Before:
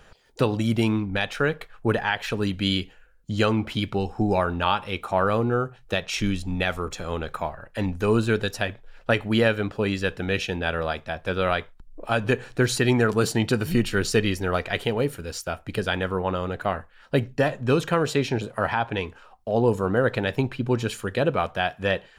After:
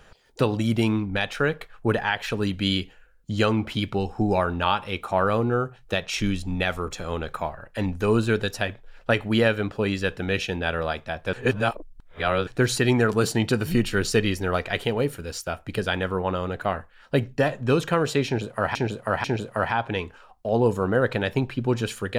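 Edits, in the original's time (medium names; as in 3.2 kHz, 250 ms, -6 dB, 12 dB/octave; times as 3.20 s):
11.33–12.47 s: reverse
18.26–18.75 s: loop, 3 plays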